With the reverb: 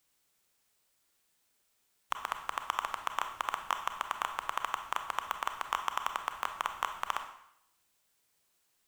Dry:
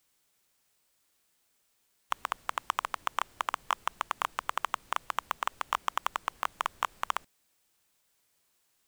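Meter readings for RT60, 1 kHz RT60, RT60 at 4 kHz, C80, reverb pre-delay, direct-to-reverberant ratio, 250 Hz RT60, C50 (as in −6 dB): 0.75 s, 0.75 s, 0.70 s, 11.5 dB, 27 ms, 7.0 dB, 0.70 s, 8.5 dB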